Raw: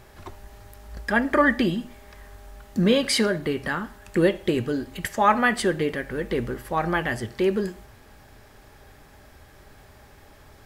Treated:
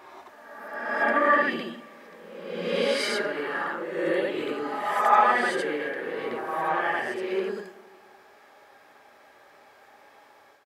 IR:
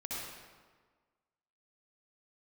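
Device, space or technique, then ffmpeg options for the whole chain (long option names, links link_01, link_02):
ghost voice: -filter_complex "[0:a]areverse[link_01];[1:a]atrim=start_sample=2205[link_02];[link_01][link_02]afir=irnorm=-1:irlink=0,areverse,highpass=530,highshelf=frequency=4200:gain=-10.5,asplit=2[link_03][link_04];[link_04]adelay=265,lowpass=frequency=2000:poles=1,volume=-21.5dB,asplit=2[link_05][link_06];[link_06]adelay=265,lowpass=frequency=2000:poles=1,volume=0.47,asplit=2[link_07][link_08];[link_08]adelay=265,lowpass=frequency=2000:poles=1,volume=0.47[link_09];[link_03][link_05][link_07][link_09]amix=inputs=4:normalize=0"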